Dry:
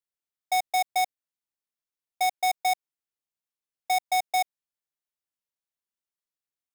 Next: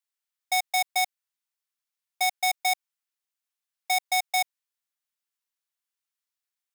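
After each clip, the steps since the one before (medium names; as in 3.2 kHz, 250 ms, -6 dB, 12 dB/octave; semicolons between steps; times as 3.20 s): high-pass 1 kHz 12 dB/octave; trim +4 dB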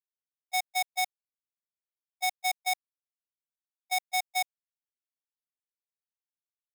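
gate -24 dBFS, range -32 dB; trim -3.5 dB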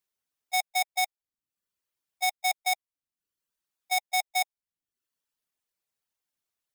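reverb removal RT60 0.63 s; in parallel at -1 dB: compressor with a negative ratio -35 dBFS, ratio -1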